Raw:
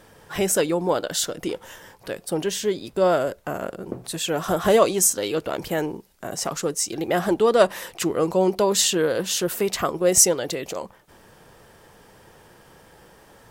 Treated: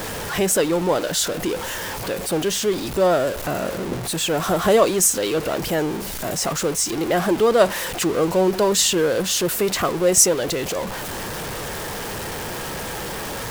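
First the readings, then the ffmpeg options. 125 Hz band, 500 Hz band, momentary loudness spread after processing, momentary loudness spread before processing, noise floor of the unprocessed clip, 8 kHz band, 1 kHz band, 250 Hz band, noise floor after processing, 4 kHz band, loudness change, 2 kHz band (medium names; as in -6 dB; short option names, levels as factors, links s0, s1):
+4.5 dB, +2.0 dB, 12 LU, 15 LU, -52 dBFS, +2.0 dB, +2.5 dB, +3.0 dB, -30 dBFS, +3.5 dB, +1.5 dB, +5.0 dB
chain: -af "aeval=exprs='val(0)+0.5*0.0631*sgn(val(0))':c=same,aeval=exprs='val(0)+0.00316*(sin(2*PI*50*n/s)+sin(2*PI*2*50*n/s)/2+sin(2*PI*3*50*n/s)/3+sin(2*PI*4*50*n/s)/4+sin(2*PI*5*50*n/s)/5)':c=same"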